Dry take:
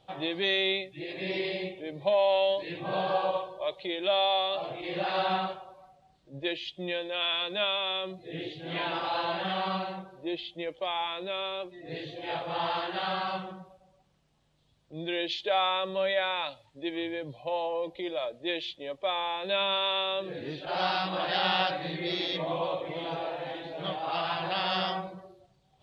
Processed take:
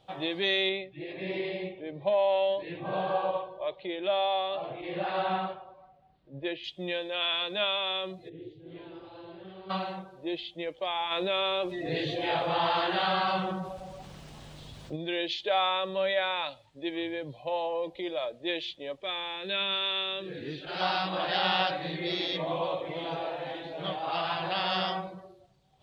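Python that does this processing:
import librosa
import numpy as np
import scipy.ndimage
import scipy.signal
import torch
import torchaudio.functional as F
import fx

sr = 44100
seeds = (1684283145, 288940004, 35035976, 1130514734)

y = fx.air_absorb(x, sr, metres=270.0, at=(0.69, 6.64))
y = fx.curve_eq(y, sr, hz=(110.0, 150.0, 220.0, 380.0, 740.0), db=(0, -10, -13, -3, -22), at=(8.28, 9.69), fade=0.02)
y = fx.env_flatten(y, sr, amount_pct=50, at=(11.1, 14.95), fade=0.02)
y = fx.band_shelf(y, sr, hz=800.0, db=-8.5, octaves=1.3, at=(19.0, 20.81))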